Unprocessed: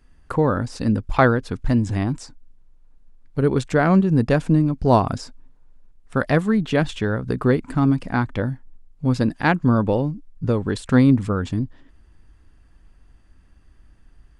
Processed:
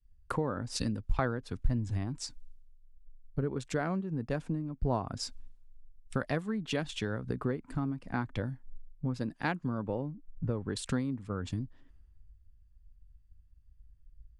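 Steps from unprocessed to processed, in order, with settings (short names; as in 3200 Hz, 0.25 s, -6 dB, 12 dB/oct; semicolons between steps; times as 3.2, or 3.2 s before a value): compressor 8:1, threshold -31 dBFS, peak gain reduction 20.5 dB; three-band expander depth 100%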